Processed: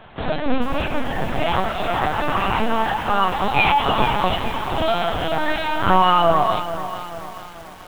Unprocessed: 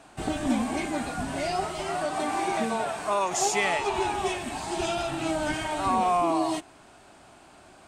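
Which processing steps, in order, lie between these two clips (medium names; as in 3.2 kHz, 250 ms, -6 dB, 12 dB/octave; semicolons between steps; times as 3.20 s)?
peaking EQ 71 Hz -4.5 dB 1.5 oct; formant shift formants +3 st; on a send at -3.5 dB: reverberation RT60 0.15 s, pre-delay 4 ms; on the sum: LPC vocoder at 8 kHz pitch kept; bit-crushed delay 437 ms, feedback 55%, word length 7-bit, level -11 dB; trim +7 dB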